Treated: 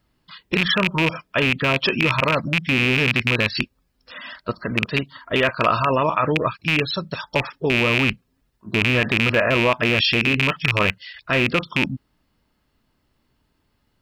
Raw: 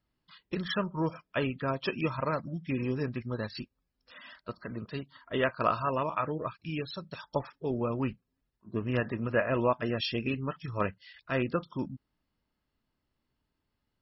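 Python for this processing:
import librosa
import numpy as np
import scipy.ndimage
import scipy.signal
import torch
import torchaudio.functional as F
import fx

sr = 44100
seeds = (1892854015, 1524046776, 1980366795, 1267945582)

p1 = fx.rattle_buzz(x, sr, strikes_db=-35.0, level_db=-20.0)
p2 = fx.dynamic_eq(p1, sr, hz=2900.0, q=0.97, threshold_db=-45.0, ratio=4.0, max_db=4)
p3 = fx.over_compress(p2, sr, threshold_db=-32.0, ratio=-1.0)
p4 = p2 + (p3 * librosa.db_to_amplitude(1.0))
y = p4 * librosa.db_to_amplitude(5.0)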